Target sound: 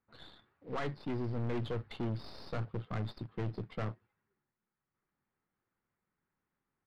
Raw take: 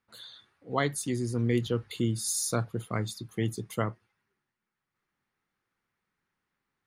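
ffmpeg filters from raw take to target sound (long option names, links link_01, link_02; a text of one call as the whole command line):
ffmpeg -i in.wav -af "aemphasis=mode=production:type=75kf,aresample=11025,acrusher=bits=3:mode=log:mix=0:aa=0.000001,aresample=44100,aeval=exprs='(tanh(44.7*val(0)+0.5)-tanh(0.5))/44.7':channel_layout=same,adynamicsmooth=sensitivity=3:basefreq=1400,volume=1dB" out.wav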